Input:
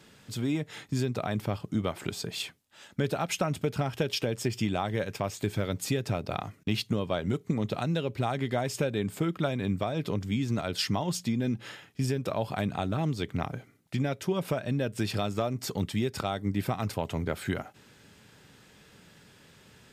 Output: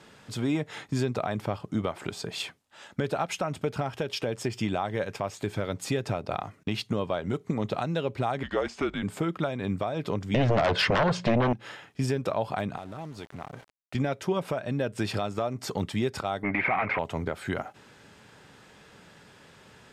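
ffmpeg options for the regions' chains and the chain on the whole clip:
ffmpeg -i in.wav -filter_complex "[0:a]asettb=1/sr,asplit=3[link_01][link_02][link_03];[link_01]atrim=end=8.434[link_04];[link_02]atrim=start=8.43:end=9.03,asetpts=PTS-STARTPTS,afade=type=in:duration=0.004:curve=qsin,afade=type=out:start_time=0.596:duration=0.004:curve=qsin,deesser=0.9,highpass=400,lowpass=6600,afreqshift=-180[link_05];[link_03]atrim=start=9.026[link_06];[link_04][link_05]acrossfade=duration=0.004:curve1=hsin:curve2=qsin[link_07];[link_07][link_06]acrossfade=duration=0.004:curve1=qsin:curve2=hsin,asettb=1/sr,asplit=3[link_08][link_09][link_10];[link_08]atrim=end=10.344[link_11];[link_09]atrim=start=10.34:end=11.53,asetpts=PTS-STARTPTS,afade=type=in:duration=0.004:curve=qsin,afade=type=out:start_time=1.186:duration=0.004:curve=qsin,lowpass=2400,aecho=1:1:1.9:0.34,atrim=end_sample=52479,aeval=exprs='0.168*sin(PI/2*4.47*val(0)/0.168)':channel_layout=same[link_12];[link_10]atrim=start=11.526[link_13];[link_11][link_12]acrossfade=duration=0.004:curve1=hsin:curve2=qsin[link_14];[link_14][link_13]acrossfade=duration=0.004:curve1=qsin:curve2=hsin,asettb=1/sr,asplit=3[link_15][link_16][link_17];[link_15]atrim=end=12.774[link_18];[link_16]atrim=start=12.77:end=13.95,asetpts=PTS-STARTPTS,afade=type=in:duration=0.004:curve=qsin,afade=type=out:start_time=1.176:duration=0.004:curve=qsin,acompressor=threshold=-40dB:ratio=4:attack=3.2:release=140:knee=1:detection=peak,aeval=exprs='val(0)*gte(abs(val(0)),0.00335)':channel_layout=same[link_19];[link_17]atrim=start=13.946[link_20];[link_18][link_19]acrossfade=duration=0.004:curve1=hsin:curve2=qsin[link_21];[link_21][link_20]acrossfade=duration=0.004:curve1=qsin:curve2=hsin,asettb=1/sr,asplit=3[link_22][link_23][link_24];[link_22]atrim=end=16.434[link_25];[link_23]atrim=start=16.43:end=16.99,asetpts=PTS-STARTPTS,afade=type=in:duration=0.004:curve=qsin,afade=type=out:start_time=0.556:duration=0.004:curve=qsin,acompressor=threshold=-31dB:ratio=2:attack=3.2:release=140:knee=1:detection=peak,asplit=2[link_26][link_27];[link_27]highpass=frequency=720:poles=1,volume=25dB,asoftclip=type=tanh:threshold=-19.5dB[link_28];[link_26][link_28]amix=inputs=2:normalize=0,lowpass=frequency=1300:poles=1,volume=-6dB,lowpass=frequency=2200:width_type=q:width=11[link_29];[link_24]atrim=start=16.986[link_30];[link_25][link_29]acrossfade=duration=0.004:curve1=hsin:curve2=qsin[link_31];[link_31][link_30]acrossfade=duration=0.004:curve1=qsin:curve2=hsin,lowpass=11000,equalizer=frequency=880:width_type=o:width=2.3:gain=7,alimiter=limit=-16dB:level=0:latency=1:release=383" out.wav

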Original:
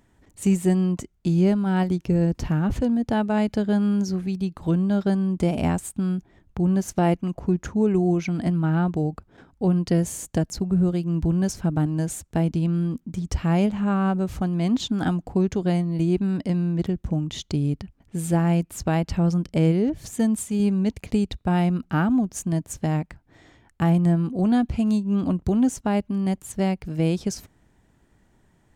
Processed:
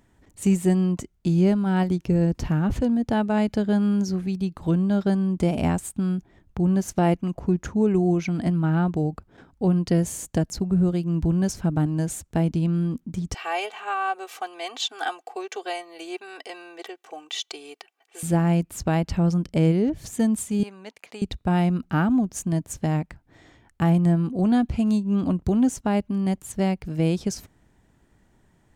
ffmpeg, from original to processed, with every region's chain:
ffmpeg -i in.wav -filter_complex "[0:a]asettb=1/sr,asplit=3[link_01][link_02][link_03];[link_01]atrim=end=13.344[link_04];[link_02]atrim=start=13.34:end=18.23,asetpts=PTS-STARTPTS,afade=type=in:duration=0.004:curve=qsin,afade=type=out:start_time=4.886:duration=0.004:curve=qsin,highpass=frequency=550:width=0.5412,highpass=frequency=550:width=1.3066,equalizer=frequency=2700:width=2:gain=5,aecho=1:1:2.6:0.82,atrim=end_sample=215649[link_05];[link_03]atrim=start=18.226[link_06];[link_04][link_05]acrossfade=duration=0.004:curve1=hsin:curve2=qsin[link_07];[link_07][link_06]acrossfade=duration=0.004:curve1=qsin:curve2=hsin,asettb=1/sr,asplit=3[link_08][link_09][link_10];[link_08]atrim=end=20.634[link_11];[link_09]atrim=start=20.63:end=21.22,asetpts=PTS-STARTPTS,afade=type=in:duration=0.004:curve=qsin,afade=type=out:start_time=0.586:duration=0.004:curve=qsin,highpass=810,highshelf=frequency=3300:gain=-7.5[link_12];[link_10]atrim=start=21.216[link_13];[link_11][link_12]acrossfade=duration=0.004:curve1=hsin:curve2=qsin[link_14];[link_14][link_13]acrossfade=duration=0.004:curve1=qsin:curve2=hsin" out.wav

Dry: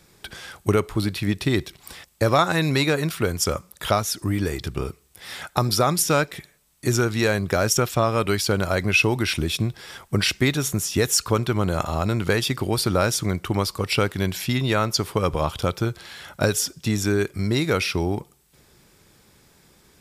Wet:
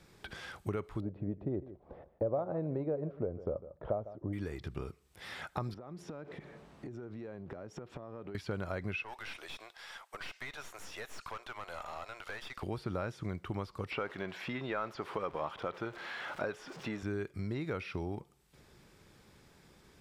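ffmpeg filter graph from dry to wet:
ffmpeg -i in.wav -filter_complex "[0:a]asettb=1/sr,asplit=3[link_01][link_02][link_03];[link_01]atrim=end=1.004[link_04];[link_02]atrim=start=1:end=4.33,asetpts=PTS-STARTPTS,afade=type=in:duration=0.004:curve=qsin,afade=type=out:start_time=3.326:duration=0.004:curve=qsin,lowpass=frequency=580:width_type=q:width=3,aecho=1:1:151:0.133,atrim=end_sample=146853[link_05];[link_03]atrim=start=4.326[link_06];[link_04][link_05]acrossfade=duration=0.004:curve1=hsin:curve2=qsin[link_07];[link_07][link_06]acrossfade=duration=0.004:curve1=qsin:curve2=hsin,asettb=1/sr,asplit=3[link_08][link_09][link_10];[link_08]atrim=end=5.744[link_11];[link_09]atrim=start=5.74:end=8.35,asetpts=PTS-STARTPTS,afade=type=in:duration=0.004:curve=qsin,afade=type=out:start_time=2.606:duration=0.004:curve=qsin,aeval=exprs='val(0)+0.5*0.02*sgn(val(0))':channel_layout=same,bandpass=frequency=330:width_type=q:width=0.67,acompressor=threshold=-33dB:ratio=12:attack=3.2:release=140:knee=1:detection=peak[link_12];[link_10]atrim=start=8.346[link_13];[link_11][link_12]acrossfade=duration=0.004:curve1=hsin:curve2=qsin[link_14];[link_14][link_13]acrossfade=duration=0.004:curve1=qsin:curve2=hsin,asettb=1/sr,asplit=3[link_15][link_16][link_17];[link_15]atrim=end=9.034[link_18];[link_16]atrim=start=9.03:end=12.63,asetpts=PTS-STARTPTS,afade=type=in:duration=0.004:curve=qsin,afade=type=out:start_time=3.596:duration=0.004:curve=qsin,highpass=frequency=630:width=0.5412,highpass=frequency=630:width=1.3066,aeval=exprs='(tanh(22.4*val(0)+0.5)-tanh(0.5))/22.4':channel_layout=same[link_19];[link_17]atrim=start=12.626[link_20];[link_18][link_19]acrossfade=duration=0.004:curve1=hsin:curve2=qsin[link_21];[link_21][link_20]acrossfade=duration=0.004:curve1=qsin:curve2=hsin,asettb=1/sr,asplit=3[link_22][link_23][link_24];[link_22]atrim=end=13.914[link_25];[link_23]atrim=start=13.91:end=17.03,asetpts=PTS-STARTPTS,afade=type=in:duration=0.004:curve=qsin,afade=type=out:start_time=3.116:duration=0.004:curve=qsin,aeval=exprs='val(0)+0.5*0.0224*sgn(val(0))':channel_layout=same,equalizer=frequency=65:width=0.84:gain=-14.5,asplit=2[link_26][link_27];[link_27]highpass=frequency=720:poles=1,volume=12dB,asoftclip=type=tanh:threshold=-3.5dB[link_28];[link_26][link_28]amix=inputs=2:normalize=0,lowpass=frequency=1900:poles=1,volume=-6dB[link_29];[link_24]atrim=start=17.026[link_30];[link_25][link_29]acrossfade=duration=0.004:curve1=hsin:curve2=qsin[link_31];[link_31][link_30]acrossfade=duration=0.004:curve1=qsin:curve2=hsin,acrossover=split=2700[link_32][link_33];[link_33]acompressor=threshold=-40dB:ratio=4:attack=1:release=60[link_34];[link_32][link_34]amix=inputs=2:normalize=0,highshelf=frequency=6400:gain=-12,acompressor=threshold=-39dB:ratio=2,volume=-4dB" out.wav

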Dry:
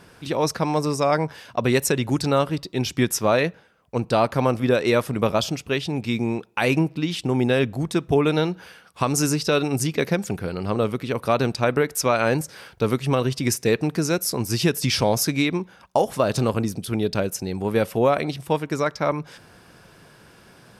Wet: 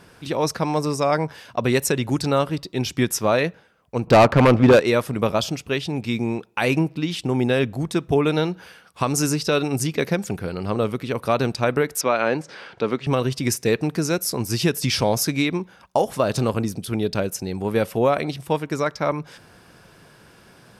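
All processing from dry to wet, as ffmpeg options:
ffmpeg -i in.wav -filter_complex "[0:a]asettb=1/sr,asplit=3[link_01][link_02][link_03];[link_01]atrim=end=4.074[link_04];[link_02]atrim=start=4.07:end=4.8,asetpts=PTS-STARTPTS,afade=type=in:duration=0.004:curve=qsin,afade=type=out:start_time=0.726:duration=0.004:curve=qsin,aemphasis=mode=reproduction:type=cd,aeval=exprs='0.422*sin(PI/2*2*val(0)/0.422)':channel_layout=same,adynamicsmooth=sensitivity=2:basefreq=2600[link_05];[link_03]atrim=start=4.796[link_06];[link_04][link_05]acrossfade=duration=0.004:curve1=hsin:curve2=qsin[link_07];[link_07][link_06]acrossfade=duration=0.004:curve1=qsin:curve2=hsin,asettb=1/sr,asplit=3[link_08][link_09][link_10];[link_08]atrim=end=12.014[link_11];[link_09]atrim=start=12.01:end=13.07,asetpts=PTS-STARTPTS,afade=type=in:duration=0.004:curve=qsin,afade=type=out:start_time=1.056:duration=0.004:curve=qsin,highpass=210,lowpass=4000,acompressor=mode=upward:threshold=-32dB:ratio=2.5:attack=3.2:release=140:knee=2.83:detection=peak[link_12];[link_10]atrim=start=13.066[link_13];[link_11][link_12]acrossfade=duration=0.004:curve1=hsin:curve2=qsin[link_14];[link_14][link_13]acrossfade=duration=0.004:curve1=qsin:curve2=hsin" out.wav

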